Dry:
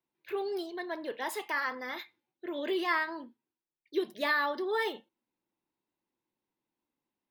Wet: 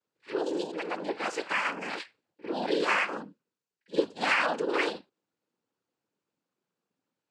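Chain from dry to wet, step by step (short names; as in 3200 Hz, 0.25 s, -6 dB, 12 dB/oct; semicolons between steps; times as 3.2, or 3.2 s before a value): noise vocoder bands 8; pre-echo 50 ms -16 dB; gain +3.5 dB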